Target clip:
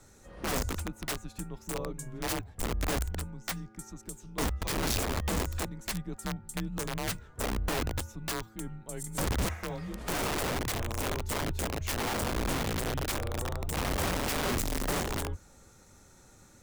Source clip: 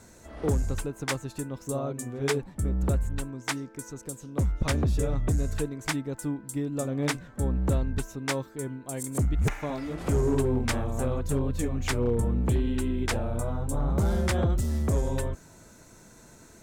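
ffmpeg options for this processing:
-af "aeval=exprs='(mod(12.6*val(0)+1,2)-1)/12.6':c=same,afreqshift=-110,volume=-4.5dB"

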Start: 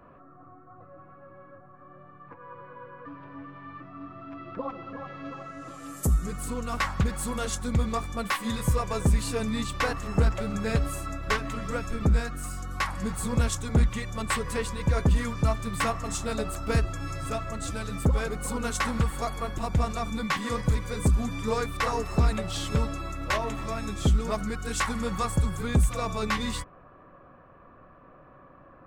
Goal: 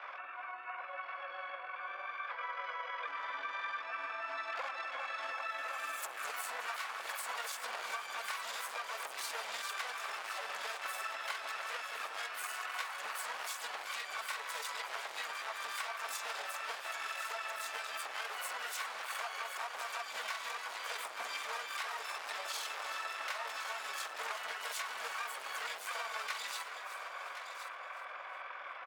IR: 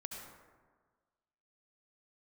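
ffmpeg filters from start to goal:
-filter_complex "[0:a]adynamicequalizer=threshold=0.00141:dfrequency=4800:dqfactor=6.8:tfrequency=4800:tqfactor=6.8:attack=5:release=100:ratio=0.375:range=2:mode=boostabove:tftype=bell,alimiter=limit=-19.5dB:level=0:latency=1:release=106,volume=34dB,asoftclip=hard,volume=-34dB,highpass=f=700:w=0.5412,highpass=f=700:w=1.3066,aemphasis=mode=reproduction:type=cd,acompressor=threshold=-47dB:ratio=16,tremolo=f=20:d=0.57,asplit=2[a][b];[b]asplit=4[c][d][e][f];[c]adelay=364,afreqshift=-36,volume=-13dB[g];[d]adelay=728,afreqshift=-72,volume=-20.1dB[h];[e]adelay=1092,afreqshift=-108,volume=-27.3dB[i];[f]adelay=1456,afreqshift=-144,volume=-34.4dB[j];[g][h][i][j]amix=inputs=4:normalize=0[k];[a][k]amix=inputs=2:normalize=0,asplit=3[l][m][n];[m]asetrate=58866,aresample=44100,atempo=0.749154,volume=-3dB[o];[n]asetrate=88200,aresample=44100,atempo=0.5,volume=-5dB[p];[l][o][p]amix=inputs=3:normalize=0,asplit=2[q][r];[r]aecho=0:1:1067:0.316[s];[q][s]amix=inputs=2:normalize=0,volume=10dB"

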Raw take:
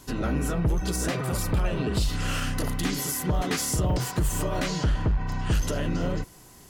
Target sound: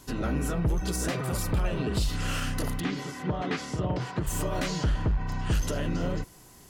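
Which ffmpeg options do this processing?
-filter_complex "[0:a]asplit=3[a][b][c];[a]afade=t=out:st=2.79:d=0.02[d];[b]highpass=100,lowpass=3.3k,afade=t=in:st=2.79:d=0.02,afade=t=out:st=4.26:d=0.02[e];[c]afade=t=in:st=4.26:d=0.02[f];[d][e][f]amix=inputs=3:normalize=0,volume=-2dB"

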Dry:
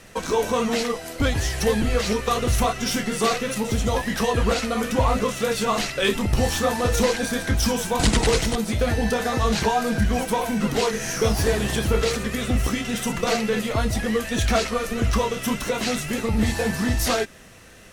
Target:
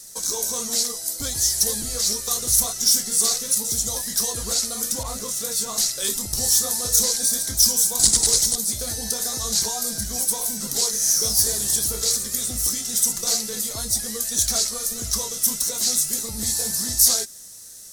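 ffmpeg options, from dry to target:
-filter_complex "[0:a]aexciter=amount=15:drive=6.6:freq=4.2k,asettb=1/sr,asplit=3[a][b][c];[a]atrim=end=5.034[d];[b]atrim=start=5.03:end=5.78,asetpts=PTS-STARTPTS,afade=t=in:d=0.004:c=qsin,afade=t=out:st=0.746:d=0.004:c=qsin,adynamicequalizer=threshold=0.0708:dfrequency=3200:dqfactor=0.7:tfrequency=3200:tqfactor=0.7:attack=5:release=100:ratio=0.375:range=2.5:mode=cutabove:tftype=highshelf[e];[c]atrim=start=5.776[f];[d][e]acrossfade=d=0.004:c1=hsin:c2=qsin[g];[g][f]acrossfade=d=0.004:c1=qsin:c2=hsin,volume=-12.5dB"

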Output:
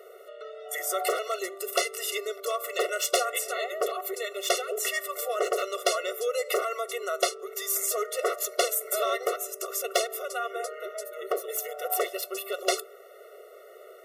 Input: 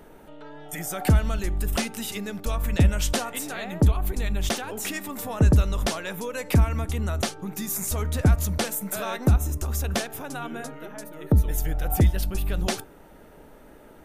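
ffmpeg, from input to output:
-af "aeval=exprs='0.133*(abs(mod(val(0)/0.133+3,4)-2)-1)':c=same,afftfilt=real='re*eq(mod(floor(b*sr/1024/370),2),1)':imag='im*eq(mod(floor(b*sr/1024/370),2),1)':win_size=1024:overlap=0.75,volume=5dB"

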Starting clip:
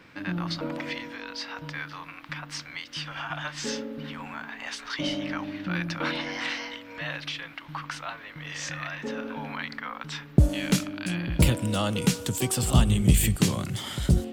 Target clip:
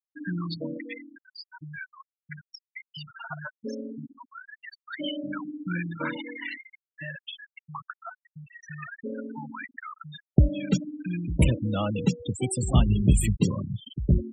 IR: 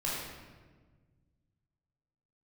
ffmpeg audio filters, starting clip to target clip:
-filter_complex "[0:a]asettb=1/sr,asplit=3[a][b][c];[a]atrim=end=4.064[d];[b]atrim=start=4.06:end=5.24,asetpts=PTS-STARTPTS,afade=t=in:d=0.004:c=qsin,afade=t=out:st=1.176:d=0.004:c=qsin,highpass=240[e];[c]atrim=start=5.236[f];[d][e]acrossfade=d=0.004:c1=hsin:c2=qsin[g];[g][f]acrossfade=d=0.004:c1=qsin:c2=hsin,afftfilt=real='re*gte(hypot(re,im),0.0794)':imag='im*gte(hypot(re,im),0.0794)':win_size=1024:overlap=0.75"

